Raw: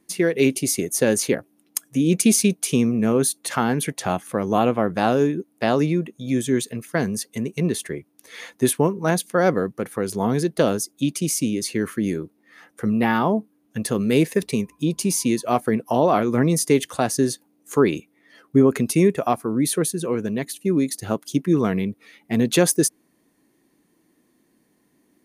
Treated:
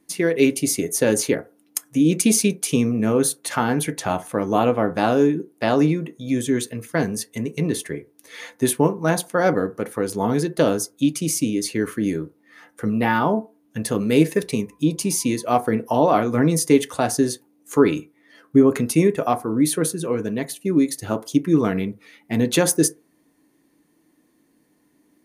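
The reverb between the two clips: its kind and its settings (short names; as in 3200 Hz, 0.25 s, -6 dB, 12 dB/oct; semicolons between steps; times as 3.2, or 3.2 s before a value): FDN reverb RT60 0.3 s, low-frequency decay 0.75×, high-frequency decay 0.4×, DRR 8 dB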